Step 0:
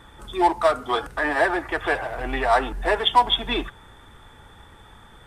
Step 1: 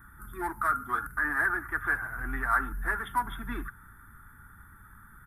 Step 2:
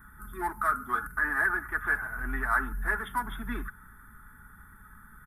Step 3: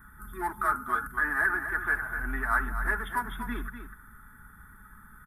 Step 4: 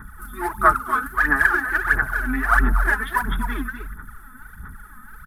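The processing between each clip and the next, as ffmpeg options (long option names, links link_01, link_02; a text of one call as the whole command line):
ffmpeg -i in.wav -af "firequalizer=gain_entry='entry(210,0);entry(550,-24);entry(1400,8);entry(2800,-25);entry(7800,-12);entry(11000,13)':delay=0.05:min_phase=1,volume=-4dB" out.wav
ffmpeg -i in.wav -af "aecho=1:1:4.7:0.39" out.wav
ffmpeg -i in.wav -af "aecho=1:1:247:0.335" out.wav
ffmpeg -i in.wav -af "aphaser=in_gain=1:out_gain=1:delay=4:decay=0.71:speed=1.5:type=sinusoidal,volume=5.5dB" out.wav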